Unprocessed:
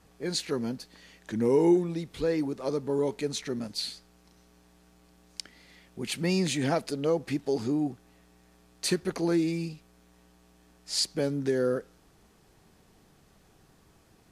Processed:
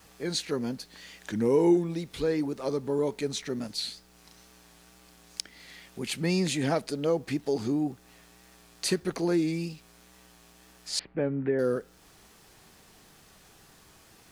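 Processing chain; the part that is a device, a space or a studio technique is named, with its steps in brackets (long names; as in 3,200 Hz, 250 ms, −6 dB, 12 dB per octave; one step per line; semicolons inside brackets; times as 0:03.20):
noise-reduction cassette on a plain deck (one half of a high-frequency compander encoder only; tape wow and flutter; white noise bed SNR 39 dB)
0:10.99–0:11.59: Butterworth low-pass 2,500 Hz 36 dB per octave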